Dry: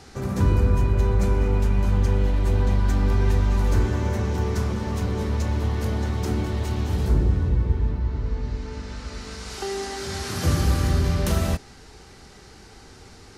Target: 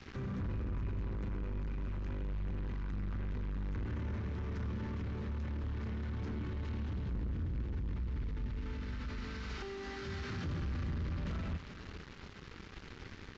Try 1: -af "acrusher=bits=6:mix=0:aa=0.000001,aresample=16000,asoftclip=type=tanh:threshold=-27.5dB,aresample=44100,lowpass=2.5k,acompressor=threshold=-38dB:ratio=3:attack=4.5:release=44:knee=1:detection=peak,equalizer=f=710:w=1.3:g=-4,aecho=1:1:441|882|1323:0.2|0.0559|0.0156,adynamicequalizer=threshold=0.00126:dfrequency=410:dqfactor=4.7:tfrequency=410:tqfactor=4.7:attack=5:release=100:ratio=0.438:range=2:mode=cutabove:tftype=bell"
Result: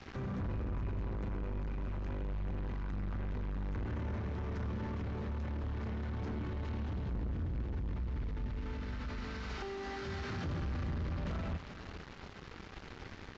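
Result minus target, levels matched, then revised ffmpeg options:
1000 Hz band +3.5 dB
-af "acrusher=bits=6:mix=0:aa=0.000001,aresample=16000,asoftclip=type=tanh:threshold=-27.5dB,aresample=44100,lowpass=2.5k,acompressor=threshold=-38dB:ratio=3:attack=4.5:release=44:knee=1:detection=peak,equalizer=f=710:w=1.3:g=-11,aecho=1:1:441|882|1323:0.2|0.0559|0.0156,adynamicequalizer=threshold=0.00126:dfrequency=410:dqfactor=4.7:tfrequency=410:tqfactor=4.7:attack=5:release=100:ratio=0.438:range=2:mode=cutabove:tftype=bell"

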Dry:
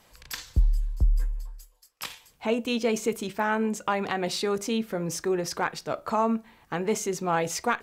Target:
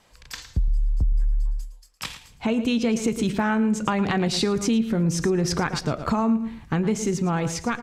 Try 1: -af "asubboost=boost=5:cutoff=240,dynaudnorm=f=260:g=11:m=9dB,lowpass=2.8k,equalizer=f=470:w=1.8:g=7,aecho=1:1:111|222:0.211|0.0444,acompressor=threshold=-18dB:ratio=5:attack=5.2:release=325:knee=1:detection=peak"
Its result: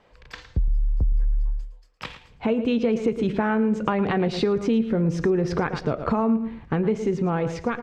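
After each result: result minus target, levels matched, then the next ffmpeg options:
8000 Hz band -16.0 dB; 500 Hz band +3.5 dB
-af "asubboost=boost=5:cutoff=240,dynaudnorm=f=260:g=11:m=9dB,lowpass=9.4k,equalizer=f=470:w=1.8:g=7,aecho=1:1:111|222:0.211|0.0444,acompressor=threshold=-18dB:ratio=5:attack=5.2:release=325:knee=1:detection=peak"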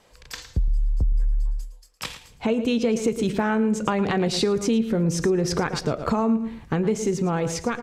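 500 Hz band +3.0 dB
-af "asubboost=boost=5:cutoff=240,dynaudnorm=f=260:g=11:m=9dB,lowpass=9.4k,aecho=1:1:111|222:0.211|0.0444,acompressor=threshold=-18dB:ratio=5:attack=5.2:release=325:knee=1:detection=peak"

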